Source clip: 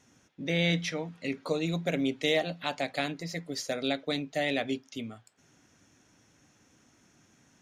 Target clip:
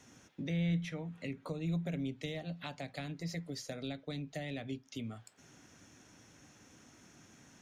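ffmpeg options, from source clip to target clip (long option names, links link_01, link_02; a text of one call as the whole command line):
ffmpeg -i in.wav -filter_complex "[0:a]asettb=1/sr,asplit=3[link_01][link_02][link_03];[link_01]atrim=end=0.564[link_04];[link_02]atrim=start=0.56:end=1.89,asetpts=PTS-STARTPTS,afade=type=in:duration=0.004:curve=qsin,afade=type=out:start_time=1.326:duration=0.004:curve=qsin,equalizer=frequency=5000:width_type=o:width=0.65:gain=-9[link_05];[link_03]atrim=start=1.886[link_06];[link_04][link_05]acrossfade=duration=0.004:curve1=hsin:curve2=qsin[link_07];[link_07][link_06]acrossfade=duration=0.004:curve1=qsin:curve2=hsin,acrossover=split=160[link_08][link_09];[link_09]acompressor=threshold=-46dB:ratio=6[link_10];[link_08][link_10]amix=inputs=2:normalize=0,volume=3.5dB" out.wav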